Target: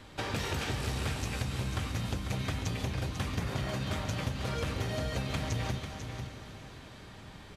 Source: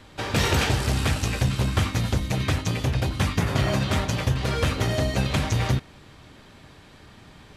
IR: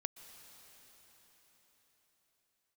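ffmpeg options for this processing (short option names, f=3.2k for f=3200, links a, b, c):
-filter_complex "[0:a]acompressor=threshold=-29dB:ratio=6,aecho=1:1:494:0.376[a];[1:a]atrim=start_sample=2205[b];[a][b]afir=irnorm=-1:irlink=0"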